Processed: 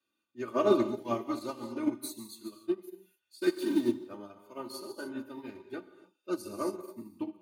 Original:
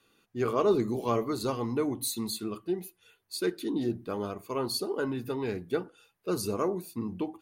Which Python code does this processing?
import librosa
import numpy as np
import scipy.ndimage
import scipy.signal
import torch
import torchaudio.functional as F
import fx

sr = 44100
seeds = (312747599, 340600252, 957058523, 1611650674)

y = fx.zero_step(x, sr, step_db=-37.5, at=(3.42, 3.88))
y = scipy.signal.sosfilt(scipy.signal.butter(2, 97.0, 'highpass', fs=sr, output='sos'), y)
y = y + 0.98 * np.pad(y, (int(3.3 * sr / 1000.0), 0))[:len(y)]
y = fx.rev_gated(y, sr, seeds[0], gate_ms=310, shape='flat', drr_db=4.0)
y = fx.upward_expand(y, sr, threshold_db=-32.0, expansion=2.5)